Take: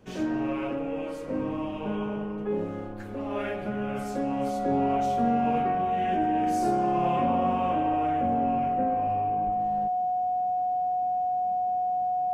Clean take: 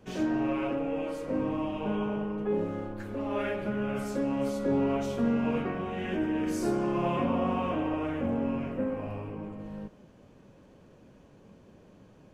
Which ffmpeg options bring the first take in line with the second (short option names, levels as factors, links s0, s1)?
-filter_complex "[0:a]bandreject=f=730:w=30,asplit=3[s0][s1][s2];[s0]afade=t=out:st=9.45:d=0.02[s3];[s1]highpass=f=140:w=0.5412,highpass=f=140:w=1.3066,afade=t=in:st=9.45:d=0.02,afade=t=out:st=9.57:d=0.02[s4];[s2]afade=t=in:st=9.57:d=0.02[s5];[s3][s4][s5]amix=inputs=3:normalize=0"